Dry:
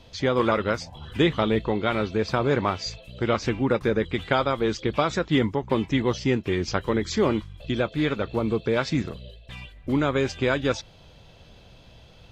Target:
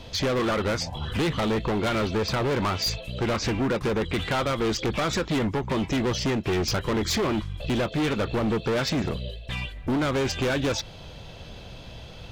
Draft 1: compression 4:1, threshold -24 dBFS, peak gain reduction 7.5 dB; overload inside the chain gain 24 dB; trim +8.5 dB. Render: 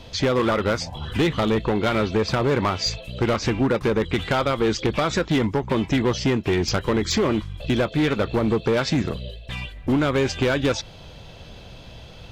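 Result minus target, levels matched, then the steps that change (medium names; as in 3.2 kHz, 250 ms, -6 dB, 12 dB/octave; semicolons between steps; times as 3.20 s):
overload inside the chain: distortion -6 dB
change: overload inside the chain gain 30.5 dB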